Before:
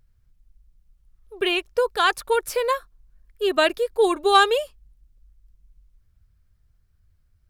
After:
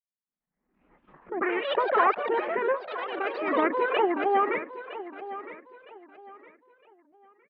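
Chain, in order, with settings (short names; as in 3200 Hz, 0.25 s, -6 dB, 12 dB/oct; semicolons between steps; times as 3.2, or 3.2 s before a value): one diode to ground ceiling -11 dBFS; expander -48 dBFS; spectral noise reduction 10 dB; harmonic-percussive split percussive +7 dB; in parallel at -11 dB: decimation with a swept rate 15×, swing 60% 2.5 Hz; on the sum: formant shift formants -4 st; elliptic band-pass 210–1900 Hz, stop band 40 dB; echoes that change speed 0.363 s, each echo +4 st, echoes 3, each echo -6 dB; air absorption 240 m; on a send: feedback echo 0.961 s, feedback 30%, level -14 dB; on the sum: backwards sustainer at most 69 dB/s; gain -5 dB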